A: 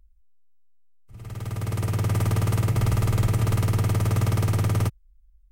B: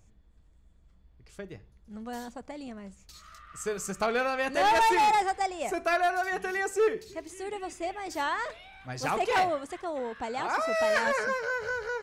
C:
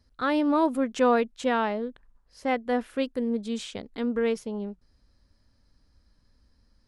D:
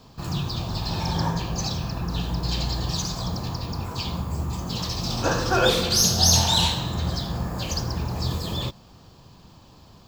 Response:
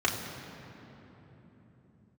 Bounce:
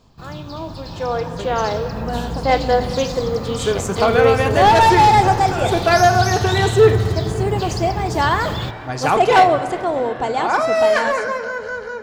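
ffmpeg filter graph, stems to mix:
-filter_complex "[0:a]adelay=2250,volume=-12.5dB,asplit=2[link_01][link_02];[link_02]volume=-12dB[link_03];[1:a]volume=2.5dB,asplit=2[link_04][link_05];[link_05]volume=-17.5dB[link_06];[2:a]highpass=frequency=330:width=0.5412,highpass=frequency=330:width=1.3066,dynaudnorm=framelen=120:gausssize=21:maxgain=13.5dB,volume=-10.5dB,asplit=2[link_07][link_08];[link_08]volume=-15.5dB[link_09];[3:a]acompressor=threshold=-24dB:ratio=6,volume=-5dB[link_10];[4:a]atrim=start_sample=2205[link_11];[link_03][link_06][link_09]amix=inputs=3:normalize=0[link_12];[link_12][link_11]afir=irnorm=-1:irlink=0[link_13];[link_01][link_04][link_07][link_10][link_13]amix=inputs=5:normalize=0,highshelf=frequency=6600:gain=-6.5,dynaudnorm=framelen=360:gausssize=9:maxgain=11.5dB"

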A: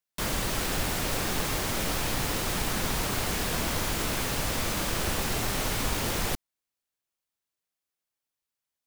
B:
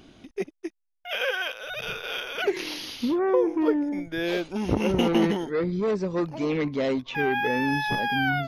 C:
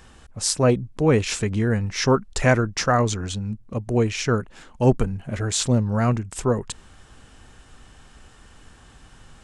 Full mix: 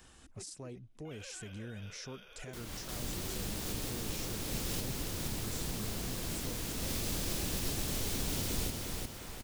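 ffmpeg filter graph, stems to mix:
ffmpeg -i stem1.wav -i stem2.wav -i stem3.wav -filter_complex "[0:a]adelay=2350,volume=-3.5dB,asplit=2[link_01][link_02];[link_02]volume=-6.5dB[link_03];[1:a]acompressor=threshold=-44dB:ratio=1.5,volume=-18dB,asplit=2[link_04][link_05];[link_05]volume=-6dB[link_06];[2:a]highshelf=frequency=3800:gain=10,acompressor=threshold=-31dB:ratio=3,alimiter=level_in=1dB:limit=-24dB:level=0:latency=1:release=34,volume=-1dB,volume=-11.5dB,asplit=2[link_07][link_08];[link_08]apad=whole_len=494380[link_09];[link_01][link_09]sidechaincompress=threshold=-56dB:ratio=6:attack=12:release=270[link_10];[link_03][link_06]amix=inputs=2:normalize=0,aecho=0:1:355|710|1065|1420|1775|2130:1|0.43|0.185|0.0795|0.0342|0.0147[link_11];[link_10][link_04][link_07][link_11]amix=inputs=4:normalize=0,acrossover=split=480|3000[link_12][link_13][link_14];[link_13]acompressor=threshold=-51dB:ratio=4[link_15];[link_12][link_15][link_14]amix=inputs=3:normalize=0" out.wav

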